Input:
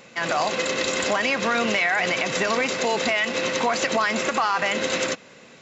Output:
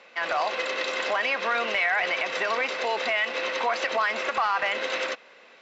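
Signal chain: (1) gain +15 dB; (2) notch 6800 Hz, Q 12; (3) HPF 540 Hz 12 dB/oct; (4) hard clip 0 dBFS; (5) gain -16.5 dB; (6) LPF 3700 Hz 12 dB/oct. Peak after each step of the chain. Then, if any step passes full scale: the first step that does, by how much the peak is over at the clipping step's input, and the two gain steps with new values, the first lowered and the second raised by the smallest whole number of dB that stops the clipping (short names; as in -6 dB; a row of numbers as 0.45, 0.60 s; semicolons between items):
+4.5, +4.5, +6.0, 0.0, -16.5, -16.0 dBFS; step 1, 6.0 dB; step 1 +9 dB, step 5 -10.5 dB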